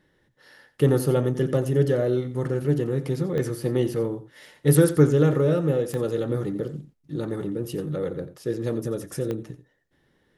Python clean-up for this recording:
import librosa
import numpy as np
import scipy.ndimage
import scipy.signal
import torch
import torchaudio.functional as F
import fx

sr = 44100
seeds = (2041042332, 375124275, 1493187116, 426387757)

y = fx.fix_declick_ar(x, sr, threshold=10.0)
y = fx.fix_echo_inverse(y, sr, delay_ms=88, level_db=-14.0)